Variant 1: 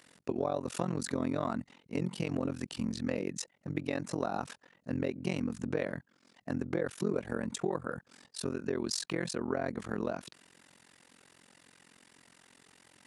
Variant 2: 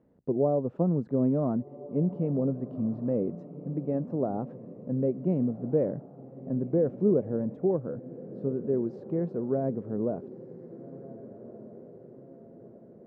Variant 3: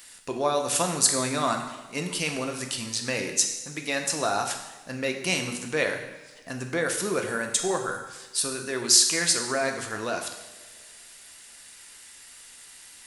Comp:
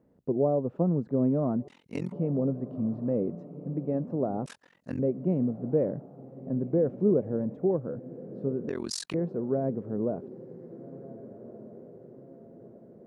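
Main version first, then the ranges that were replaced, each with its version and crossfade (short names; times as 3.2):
2
1.68–2.12 from 1
4.46–4.99 from 1
8.69–9.14 from 1
not used: 3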